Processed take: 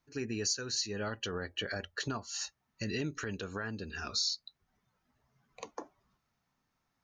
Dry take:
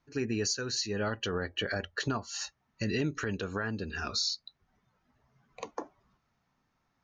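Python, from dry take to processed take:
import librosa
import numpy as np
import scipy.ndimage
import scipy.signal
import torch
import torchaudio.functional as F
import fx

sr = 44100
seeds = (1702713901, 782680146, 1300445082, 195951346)

y = fx.high_shelf(x, sr, hz=4200.0, db=7.0)
y = y * librosa.db_to_amplitude(-5.0)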